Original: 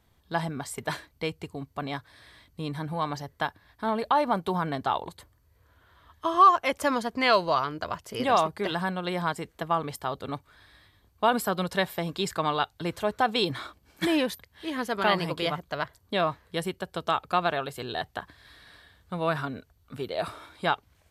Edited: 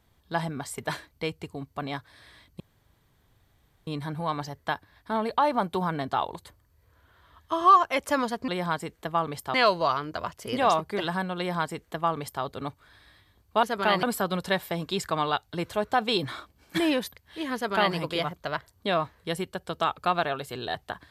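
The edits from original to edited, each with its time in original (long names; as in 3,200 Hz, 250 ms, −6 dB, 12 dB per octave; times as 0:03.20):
0:02.60: splice in room tone 1.27 s
0:09.04–0:10.10: duplicate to 0:07.21
0:14.82–0:15.22: duplicate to 0:11.30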